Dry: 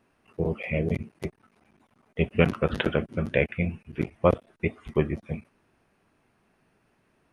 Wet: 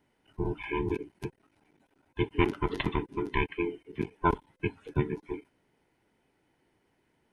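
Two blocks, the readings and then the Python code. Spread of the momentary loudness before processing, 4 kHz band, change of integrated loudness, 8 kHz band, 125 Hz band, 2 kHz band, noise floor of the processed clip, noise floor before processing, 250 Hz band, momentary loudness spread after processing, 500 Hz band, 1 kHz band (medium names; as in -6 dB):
14 LU, -3.0 dB, -4.5 dB, no reading, -6.5 dB, -4.5 dB, -73 dBFS, -69 dBFS, -3.5 dB, 13 LU, -6.5 dB, +2.0 dB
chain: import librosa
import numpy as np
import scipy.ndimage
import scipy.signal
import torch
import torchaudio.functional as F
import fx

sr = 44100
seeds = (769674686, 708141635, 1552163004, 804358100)

y = fx.band_invert(x, sr, width_hz=500)
y = fx.peak_eq(y, sr, hz=1200.0, db=-9.0, octaves=0.26)
y = y * 10.0 ** (-4.0 / 20.0)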